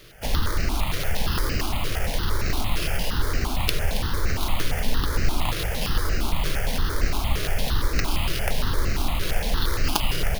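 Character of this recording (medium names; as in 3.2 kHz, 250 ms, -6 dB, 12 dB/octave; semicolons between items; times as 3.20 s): aliases and images of a low sample rate 7.8 kHz, jitter 0%; notches that jump at a steady rate 8.7 Hz 230–3400 Hz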